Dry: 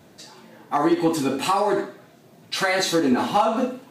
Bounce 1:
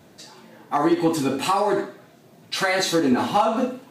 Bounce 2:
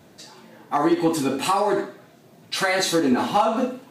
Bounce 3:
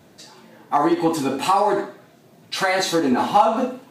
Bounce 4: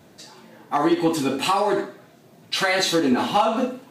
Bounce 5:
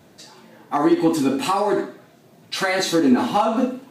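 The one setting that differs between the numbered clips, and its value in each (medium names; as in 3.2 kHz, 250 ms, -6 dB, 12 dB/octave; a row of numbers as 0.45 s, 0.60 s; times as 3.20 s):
dynamic bell, frequency: 100 Hz, 10 kHz, 850 Hz, 3.1 kHz, 270 Hz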